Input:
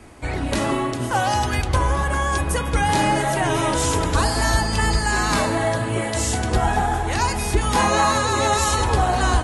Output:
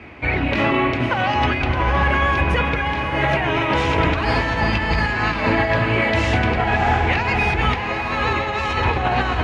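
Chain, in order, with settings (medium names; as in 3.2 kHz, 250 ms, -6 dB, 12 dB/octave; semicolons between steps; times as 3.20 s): high-pass 58 Hz; peaking EQ 2.4 kHz +13 dB 0.76 oct; compressor with a negative ratio -20 dBFS, ratio -0.5; distance through air 270 m; echo that smears into a reverb 641 ms, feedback 47%, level -8 dB; trim +2.5 dB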